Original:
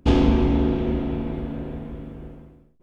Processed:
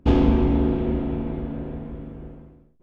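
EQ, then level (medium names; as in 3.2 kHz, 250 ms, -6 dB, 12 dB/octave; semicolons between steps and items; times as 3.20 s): treble shelf 3.2 kHz -10.5 dB; 0.0 dB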